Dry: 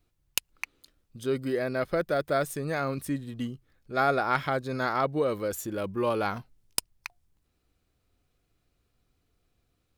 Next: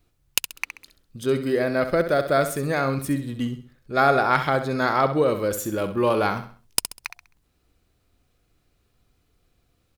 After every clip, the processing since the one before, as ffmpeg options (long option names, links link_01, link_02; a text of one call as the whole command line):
ffmpeg -i in.wav -af "aecho=1:1:66|132|198|264:0.316|0.111|0.0387|0.0136,volume=6dB" out.wav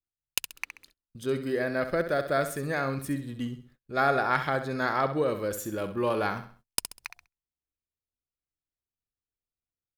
ffmpeg -i in.wav -af "agate=range=-27dB:threshold=-50dB:ratio=16:detection=peak,adynamicequalizer=threshold=0.00631:dfrequency=1700:dqfactor=6.7:tfrequency=1700:tqfactor=6.7:attack=5:release=100:ratio=0.375:range=3.5:mode=boostabove:tftype=bell,volume=-6.5dB" out.wav